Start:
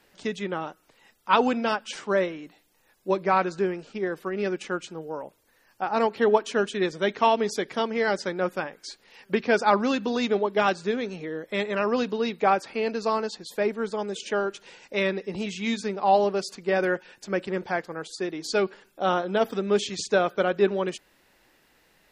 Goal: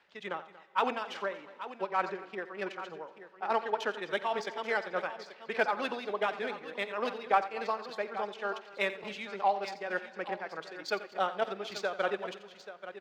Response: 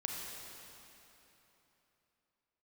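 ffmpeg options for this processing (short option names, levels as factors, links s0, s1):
-filter_complex "[0:a]highpass=49,acrossover=split=550 4700:gain=0.224 1 0.251[s0][s1][s2];[s0][s1][s2]amix=inputs=3:normalize=0,tremolo=f=2:d=0.66,acontrast=76,atempo=1.7,adynamicsmooth=sensitivity=4:basefreq=6300,aecho=1:1:86|235|834:0.188|0.112|0.224,asplit=2[s3][s4];[1:a]atrim=start_sample=2205,adelay=50[s5];[s4][s5]afir=irnorm=-1:irlink=0,volume=0.1[s6];[s3][s6]amix=inputs=2:normalize=0,volume=0.398"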